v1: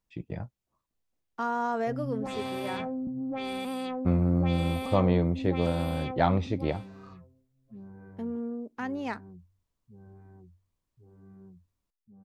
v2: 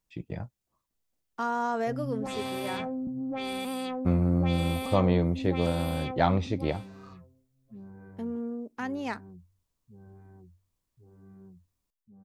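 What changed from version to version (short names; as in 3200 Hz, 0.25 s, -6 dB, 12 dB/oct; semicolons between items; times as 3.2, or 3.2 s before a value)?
master: add high shelf 4700 Hz +7 dB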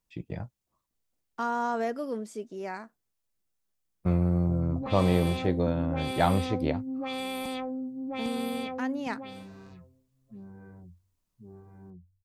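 background: entry +2.60 s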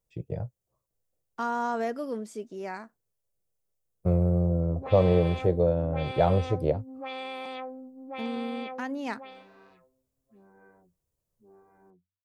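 first voice: add graphic EQ 125/250/500/1000/2000/4000 Hz +7/-10/+11/-5/-8/-8 dB; background: add BPF 450–3100 Hz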